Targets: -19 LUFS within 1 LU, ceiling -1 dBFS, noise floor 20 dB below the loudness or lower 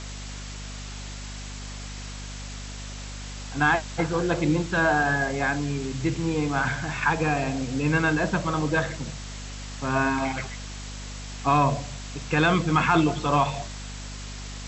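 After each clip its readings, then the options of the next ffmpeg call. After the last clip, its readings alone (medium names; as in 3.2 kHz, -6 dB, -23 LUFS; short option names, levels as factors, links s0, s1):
hum 50 Hz; highest harmonic 250 Hz; hum level -35 dBFS; noise floor -37 dBFS; noise floor target -45 dBFS; loudness -24.5 LUFS; peak level -7.0 dBFS; loudness target -19.0 LUFS
-> -af "bandreject=f=50:t=h:w=4,bandreject=f=100:t=h:w=4,bandreject=f=150:t=h:w=4,bandreject=f=200:t=h:w=4,bandreject=f=250:t=h:w=4"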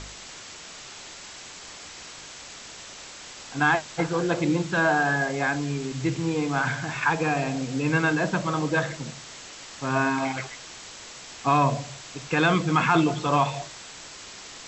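hum not found; noise floor -43 dBFS; noise floor target -45 dBFS
-> -af "afftdn=nr=6:nf=-43"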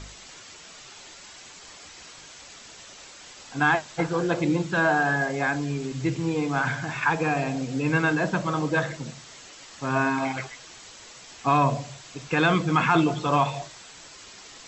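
noise floor -46 dBFS; loudness -24.5 LUFS; peak level -7.0 dBFS; loudness target -19.0 LUFS
-> -af "volume=1.88"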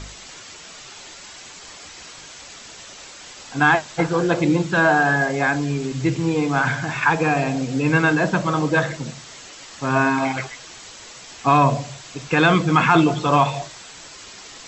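loudness -19.0 LUFS; peak level -1.5 dBFS; noise floor -41 dBFS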